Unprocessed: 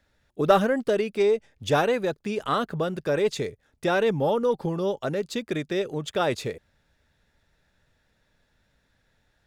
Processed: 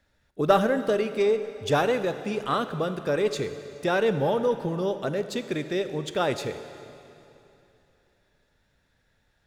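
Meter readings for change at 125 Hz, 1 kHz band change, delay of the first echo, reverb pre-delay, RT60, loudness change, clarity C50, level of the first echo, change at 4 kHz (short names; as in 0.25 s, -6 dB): -0.5 dB, -0.5 dB, none, 8 ms, 2.9 s, -0.5 dB, 11.0 dB, none, -0.5 dB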